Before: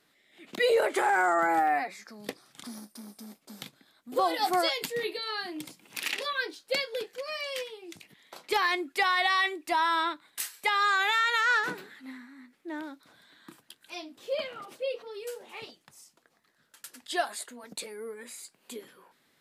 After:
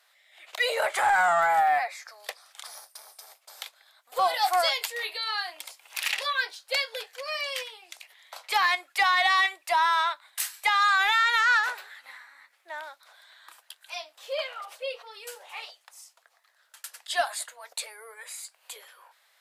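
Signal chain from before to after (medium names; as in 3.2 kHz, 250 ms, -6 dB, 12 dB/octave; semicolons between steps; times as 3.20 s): steep high-pass 600 Hz 36 dB/octave; in parallel at -3 dB: saturation -24 dBFS, distortion -13 dB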